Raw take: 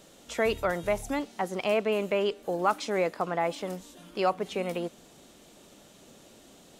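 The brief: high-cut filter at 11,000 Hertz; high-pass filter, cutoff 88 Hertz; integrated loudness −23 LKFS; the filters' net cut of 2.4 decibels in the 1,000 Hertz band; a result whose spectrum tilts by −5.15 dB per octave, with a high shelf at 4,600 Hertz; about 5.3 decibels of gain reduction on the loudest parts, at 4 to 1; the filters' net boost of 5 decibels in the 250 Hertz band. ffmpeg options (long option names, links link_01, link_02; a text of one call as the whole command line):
ffmpeg -i in.wav -af "highpass=88,lowpass=11000,equalizer=frequency=250:width_type=o:gain=7.5,equalizer=frequency=1000:width_type=o:gain=-3.5,highshelf=frequency=4600:gain=-9,acompressor=threshold=-27dB:ratio=4,volume=10dB" out.wav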